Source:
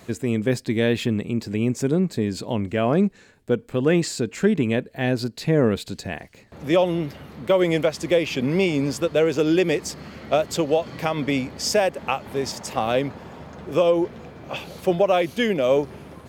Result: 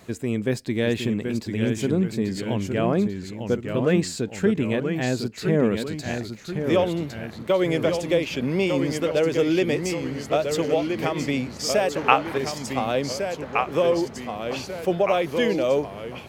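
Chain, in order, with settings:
0:11.95–0:12.38: parametric band 1,500 Hz +12.5 dB 2.7 octaves
delay with pitch and tempo change per echo 752 ms, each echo −1 semitone, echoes 2, each echo −6 dB
level −2.5 dB

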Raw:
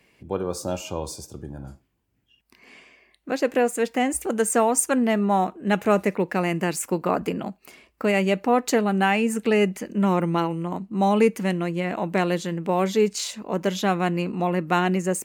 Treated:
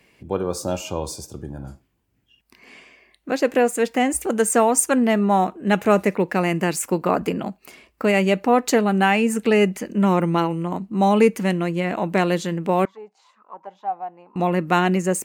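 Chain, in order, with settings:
0:12.85–0:14.36: envelope filter 780–1,600 Hz, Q 10, down, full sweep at −20 dBFS
level +3 dB

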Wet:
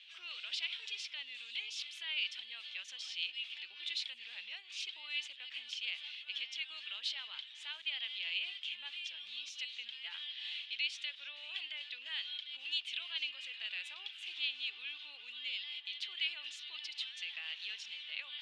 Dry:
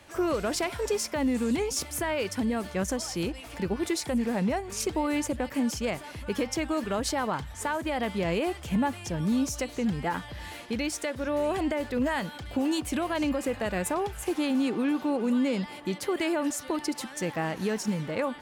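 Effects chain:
reversed playback
upward compression, threshold −35 dBFS
reversed playback
brickwall limiter −21.5 dBFS, peak gain reduction 3.5 dB
flat-topped band-pass 3,200 Hz, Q 2.6
level +7 dB

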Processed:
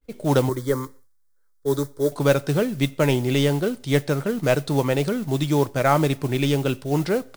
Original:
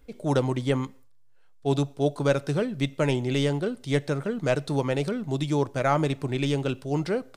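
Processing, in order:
noise that follows the level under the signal 21 dB
0:00.49–0:02.12: phaser with its sweep stopped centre 730 Hz, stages 6
downward expander −45 dBFS
level +4.5 dB

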